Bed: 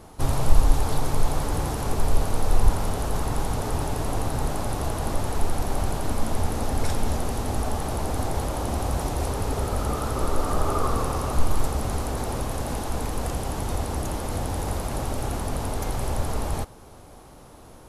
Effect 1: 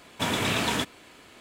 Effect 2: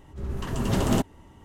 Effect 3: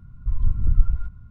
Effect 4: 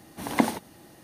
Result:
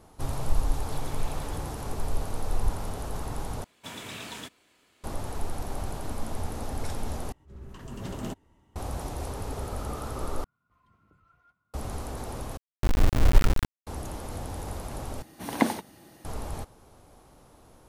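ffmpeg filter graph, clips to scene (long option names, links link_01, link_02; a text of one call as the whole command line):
ffmpeg -i bed.wav -i cue0.wav -i cue1.wav -i cue2.wav -i cue3.wav -filter_complex "[1:a]asplit=2[link_01][link_02];[3:a]asplit=2[link_03][link_04];[0:a]volume=-8dB[link_05];[link_01]acompressor=threshold=-28dB:ratio=6:attack=3.2:release=140:knee=1:detection=peak[link_06];[link_02]highshelf=frequency=3700:gain=5.5[link_07];[link_03]highpass=540[link_08];[link_04]acrusher=bits=3:mix=0:aa=0.000001[link_09];[link_05]asplit=6[link_10][link_11][link_12][link_13][link_14][link_15];[link_10]atrim=end=3.644[link_16];[link_07]atrim=end=1.4,asetpts=PTS-STARTPTS,volume=-15dB[link_17];[link_11]atrim=start=5.036:end=7.324[link_18];[2:a]atrim=end=1.44,asetpts=PTS-STARTPTS,volume=-12.5dB[link_19];[link_12]atrim=start=8.756:end=10.444[link_20];[link_08]atrim=end=1.3,asetpts=PTS-STARTPTS,volume=-11dB[link_21];[link_13]atrim=start=11.736:end=12.574[link_22];[link_09]atrim=end=1.3,asetpts=PTS-STARTPTS,volume=-1.5dB[link_23];[link_14]atrim=start=13.866:end=15.224[link_24];[4:a]atrim=end=1.03,asetpts=PTS-STARTPTS,volume=-1.5dB[link_25];[link_15]atrim=start=16.246[link_26];[link_06]atrim=end=1.4,asetpts=PTS-STARTPTS,volume=-17dB,afade=type=in:duration=0.004:curve=hsin,afade=type=out:start_time=1.396:duration=0.004:curve=hsin,adelay=740[link_27];[link_16][link_17]acrossfade=duration=0.004:curve1=hsin:curve2=hsin[link_28];[link_28][link_18]acrossfade=duration=0.004:curve1=hsin:curve2=hsin[link_29];[link_29][link_19]acrossfade=duration=0.004:curve1=hsin:curve2=hsin[link_30];[link_30][link_20]acrossfade=duration=0.004:curve1=hsin:curve2=hsin[link_31];[link_31][link_21]acrossfade=duration=0.004:curve1=hsin:curve2=hsin[link_32];[link_32][link_22]acrossfade=duration=0.004:curve1=hsin:curve2=hsin[link_33];[link_33][link_23]acrossfade=duration=0.004:curve1=hsin:curve2=hsin[link_34];[link_34][link_24]acrossfade=duration=0.004:curve1=hsin:curve2=hsin[link_35];[link_35][link_25]acrossfade=duration=0.004:curve1=hsin:curve2=hsin[link_36];[link_36][link_26]acrossfade=duration=0.004:curve1=hsin:curve2=hsin[link_37];[link_37][link_27]amix=inputs=2:normalize=0" out.wav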